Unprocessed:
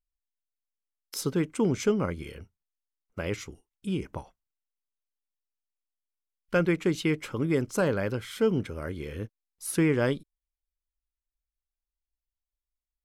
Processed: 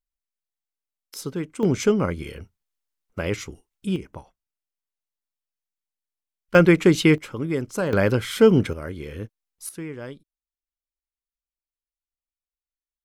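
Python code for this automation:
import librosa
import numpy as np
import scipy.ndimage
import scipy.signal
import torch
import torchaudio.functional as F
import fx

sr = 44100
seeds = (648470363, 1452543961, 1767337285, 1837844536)

y = fx.gain(x, sr, db=fx.steps((0.0, -2.0), (1.63, 5.5), (3.96, -2.0), (6.55, 10.0), (7.18, 0.5), (7.93, 10.0), (8.73, 2.0), (9.69, -10.5)))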